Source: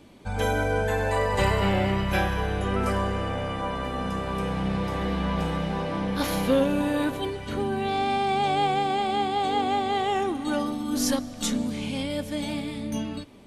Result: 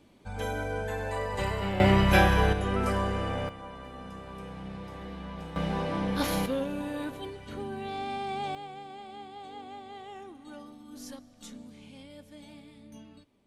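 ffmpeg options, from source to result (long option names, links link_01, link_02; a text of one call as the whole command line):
ffmpeg -i in.wav -af "asetnsamples=nb_out_samples=441:pad=0,asendcmd='1.8 volume volume 4dB;2.53 volume volume -2.5dB;3.49 volume volume -13.5dB;5.56 volume volume -2dB;6.46 volume volume -9.5dB;8.55 volume volume -19dB',volume=-8dB" out.wav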